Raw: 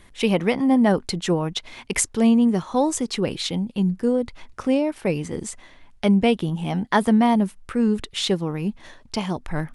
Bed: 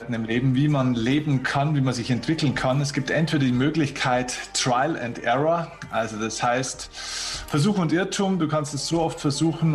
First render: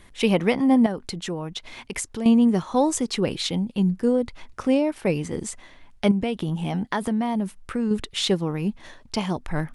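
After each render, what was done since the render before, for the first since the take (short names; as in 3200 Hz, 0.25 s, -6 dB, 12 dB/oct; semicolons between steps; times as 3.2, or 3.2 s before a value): 0.86–2.26 compressor 2:1, threshold -32 dBFS; 6.11–7.91 compressor 5:1, threshold -21 dBFS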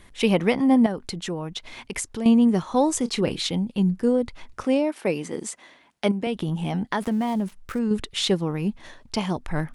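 2.98–3.44 doubler 29 ms -13 dB; 4.64–6.27 HPF 230 Hz; 7–7.79 switching dead time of 0.066 ms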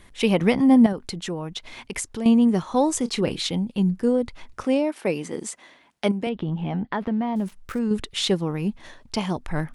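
0.41–0.93 tone controls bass +6 dB, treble +2 dB; 6.29–7.36 air absorption 300 m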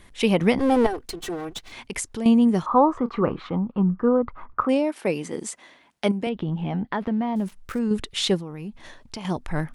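0.59–1.72 minimum comb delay 2.6 ms; 2.66–4.69 synth low-pass 1200 Hz, resonance Q 7.1; 8.38–9.25 compressor 4:1, threshold -32 dBFS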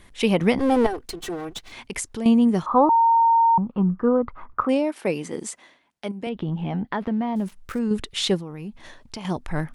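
2.89–3.58 bleep 919 Hz -13.5 dBFS; 5.47–6.48 dip -8.5 dB, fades 0.34 s equal-power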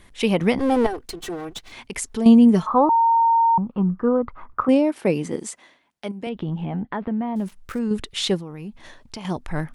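2.01–2.71 comb 4.6 ms, depth 86%; 4.68–5.36 low shelf 400 Hz +8 dB; 6.65–7.36 air absorption 310 m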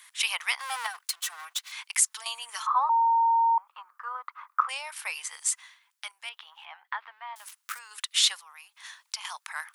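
steep high-pass 1000 Hz 36 dB/oct; high shelf 5700 Hz +11 dB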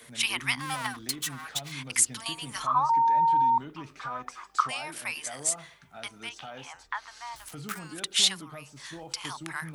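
add bed -21 dB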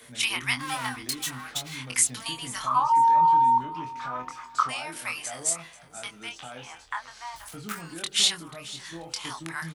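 doubler 24 ms -5 dB; feedback echo 0.486 s, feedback 35%, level -18 dB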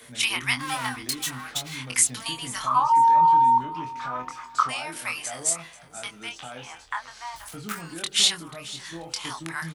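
gain +2 dB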